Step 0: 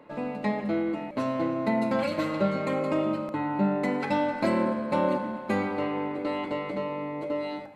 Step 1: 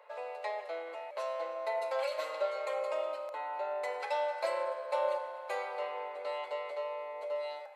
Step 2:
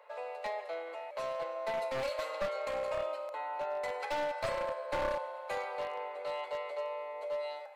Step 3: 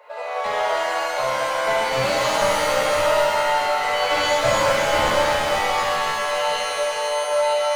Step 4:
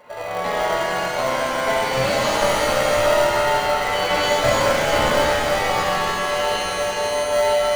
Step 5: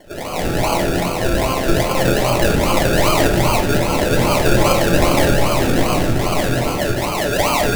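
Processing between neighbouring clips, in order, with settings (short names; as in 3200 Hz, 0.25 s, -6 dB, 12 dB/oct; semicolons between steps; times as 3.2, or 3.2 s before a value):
steep high-pass 500 Hz 48 dB/oct; dynamic EQ 1600 Hz, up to -5 dB, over -43 dBFS, Q 0.71; gain -2.5 dB
one-sided fold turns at -30 dBFS
shimmer reverb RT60 2 s, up +7 st, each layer -2 dB, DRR -6.5 dB; gain +7.5 dB
in parallel at -9 dB: sample-rate reducer 1300 Hz, jitter 0%; on the sum: split-band echo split 780 Hz, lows 0.191 s, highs 0.309 s, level -13 dB
decimation with a swept rate 34×, swing 60% 2.5 Hz; on a send at -1.5 dB: reverb, pre-delay 3 ms; on the sum: gain +1 dB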